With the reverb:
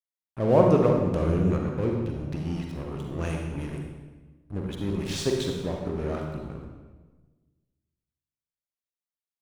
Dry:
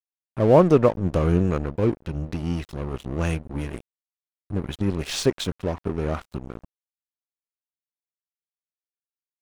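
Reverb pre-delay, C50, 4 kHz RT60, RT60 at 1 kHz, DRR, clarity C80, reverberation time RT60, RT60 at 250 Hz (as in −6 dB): 38 ms, 2.5 dB, 1.0 s, 1.2 s, 1.0 dB, 4.5 dB, 1.3 s, 1.6 s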